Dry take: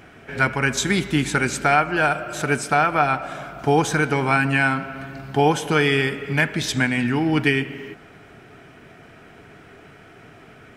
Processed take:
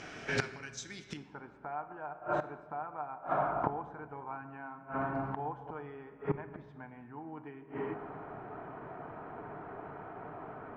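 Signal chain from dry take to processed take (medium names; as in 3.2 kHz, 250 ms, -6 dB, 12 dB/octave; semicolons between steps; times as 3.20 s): bass shelf 210 Hz -6.5 dB; inverted gate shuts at -20 dBFS, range -26 dB; resonant low-pass 5.9 kHz, resonance Q 3.2, from 1.17 s 970 Hz; simulated room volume 1200 m³, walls mixed, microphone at 0.46 m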